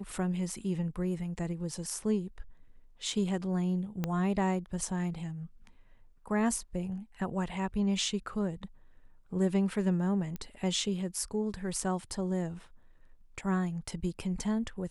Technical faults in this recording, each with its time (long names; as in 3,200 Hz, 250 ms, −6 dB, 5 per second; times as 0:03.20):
0:04.04: click −18 dBFS
0:10.36: click −25 dBFS